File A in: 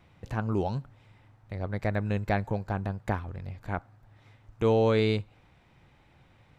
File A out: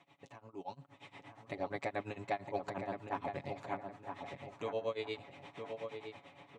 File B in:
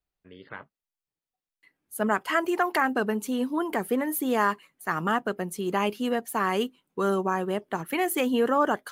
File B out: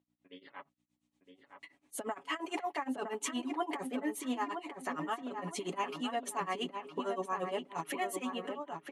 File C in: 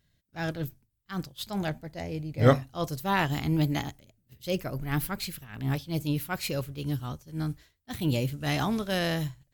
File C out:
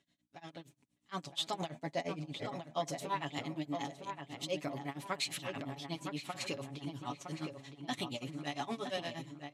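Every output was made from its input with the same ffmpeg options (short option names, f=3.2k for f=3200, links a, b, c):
-filter_complex "[0:a]highshelf=f=6.1k:g=-3.5,aecho=1:1:7.1:0.76,acompressor=threshold=-35dB:ratio=12,alimiter=level_in=11.5dB:limit=-24dB:level=0:latency=1:release=18,volume=-11.5dB,dynaudnorm=f=360:g=5:m=12.5dB,aeval=exprs='val(0)+0.000631*(sin(2*PI*60*n/s)+sin(2*PI*2*60*n/s)/2+sin(2*PI*3*60*n/s)/3+sin(2*PI*4*60*n/s)/4+sin(2*PI*5*60*n/s)/5)':c=same,tremolo=f=8.6:d=0.94,highpass=330,equalizer=f=450:t=q:w=4:g=-7,equalizer=f=1.5k:t=q:w=4:g=-10,equalizer=f=4.9k:t=q:w=4:g=-6,lowpass=f=9k:w=0.5412,lowpass=f=9k:w=1.3066,asplit=2[a][b];[b]adelay=963,lowpass=f=2.3k:p=1,volume=-6dB,asplit=2[c][d];[d]adelay=963,lowpass=f=2.3k:p=1,volume=0.36,asplit=2[e][f];[f]adelay=963,lowpass=f=2.3k:p=1,volume=0.36,asplit=2[g][h];[h]adelay=963,lowpass=f=2.3k:p=1,volume=0.36[i];[a][c][e][g][i]amix=inputs=5:normalize=0,volume=1.5dB"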